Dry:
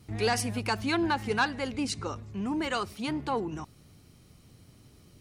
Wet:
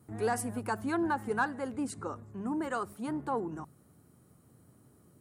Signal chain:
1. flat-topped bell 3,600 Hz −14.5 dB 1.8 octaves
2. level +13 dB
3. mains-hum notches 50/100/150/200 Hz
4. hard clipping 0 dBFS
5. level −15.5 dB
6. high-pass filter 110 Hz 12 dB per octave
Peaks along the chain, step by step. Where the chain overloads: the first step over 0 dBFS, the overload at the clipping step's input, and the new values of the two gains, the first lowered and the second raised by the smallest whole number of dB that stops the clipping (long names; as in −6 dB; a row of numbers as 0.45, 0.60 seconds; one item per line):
−17.5, −4.5, −4.0, −4.0, −19.5, −19.0 dBFS
no step passes full scale